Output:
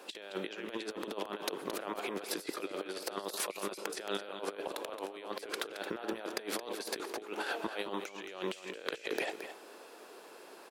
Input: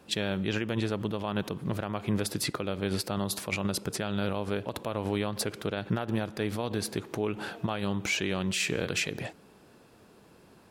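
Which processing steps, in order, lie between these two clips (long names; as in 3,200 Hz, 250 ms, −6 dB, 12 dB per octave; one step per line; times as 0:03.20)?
high-pass filter 360 Hz 24 dB per octave
compressor whose output falls as the input rises −40 dBFS, ratio −0.5
single-tap delay 221 ms −10 dB
level +1 dB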